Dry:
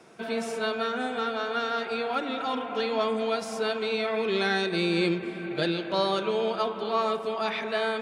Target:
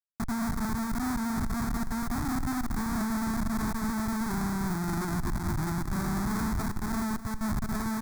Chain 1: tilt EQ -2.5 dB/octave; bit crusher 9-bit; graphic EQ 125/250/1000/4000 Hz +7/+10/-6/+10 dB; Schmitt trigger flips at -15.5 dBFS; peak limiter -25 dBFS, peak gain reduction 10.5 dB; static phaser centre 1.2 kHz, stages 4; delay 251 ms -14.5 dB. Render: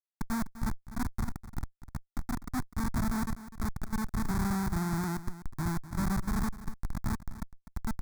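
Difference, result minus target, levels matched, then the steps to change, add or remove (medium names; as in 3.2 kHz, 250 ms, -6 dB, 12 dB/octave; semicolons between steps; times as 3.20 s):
Schmitt trigger: distortion +7 dB
change: Schmitt trigger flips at -21.5 dBFS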